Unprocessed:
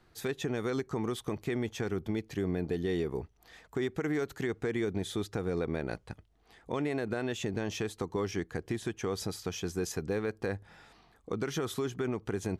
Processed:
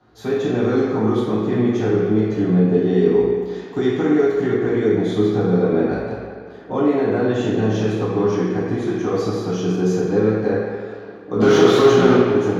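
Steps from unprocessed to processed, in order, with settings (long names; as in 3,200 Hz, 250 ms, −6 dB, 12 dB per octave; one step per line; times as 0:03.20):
0:03.02–0:04.03: parametric band 5,000 Hz +7 dB 2.4 octaves
0:11.39–0:12.14: mid-hump overdrive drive 34 dB, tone 4,200 Hz, clips at −20 dBFS
convolution reverb RT60 2.2 s, pre-delay 3 ms, DRR −11 dB
level −7 dB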